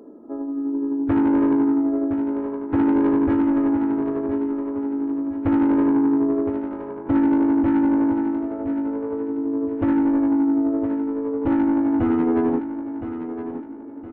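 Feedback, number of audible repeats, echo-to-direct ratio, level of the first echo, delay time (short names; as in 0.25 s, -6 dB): 37%, 3, -9.5 dB, -10.0 dB, 1.016 s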